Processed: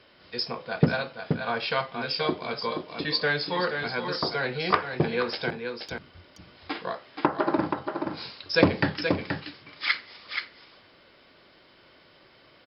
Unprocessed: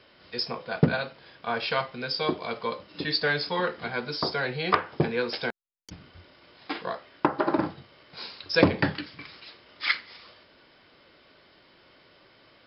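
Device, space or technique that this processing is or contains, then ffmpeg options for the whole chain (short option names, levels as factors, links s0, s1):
ducked delay: -filter_complex "[0:a]asplit=3[s0][s1][s2];[s1]adelay=477,volume=0.501[s3];[s2]apad=whole_len=579383[s4];[s3][s4]sidechaincompress=threshold=0.0398:ratio=8:attack=8.2:release=131[s5];[s0][s5]amix=inputs=2:normalize=0"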